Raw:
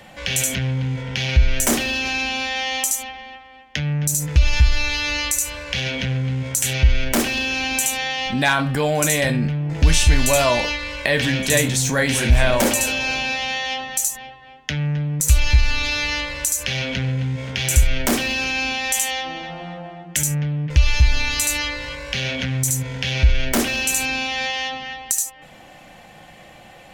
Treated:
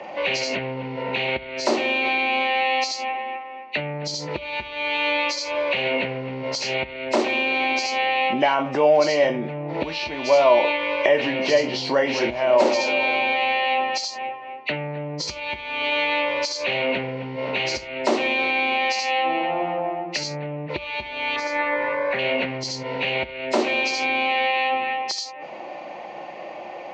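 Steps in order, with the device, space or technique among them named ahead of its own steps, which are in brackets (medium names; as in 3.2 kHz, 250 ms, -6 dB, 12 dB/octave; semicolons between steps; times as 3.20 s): hearing aid with frequency lowering (knee-point frequency compression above 2 kHz 1.5:1; compression 4:1, threshold -25 dBFS, peak gain reduction 14 dB; cabinet simulation 330–5200 Hz, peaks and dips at 360 Hz +9 dB, 600 Hz +8 dB, 930 Hz +7 dB, 1.6 kHz -9 dB, 3.6 kHz -5 dB, 5.1 kHz -7 dB); 21.36–22.19 s: resonant high shelf 2.3 kHz -8 dB, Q 3; trim +6.5 dB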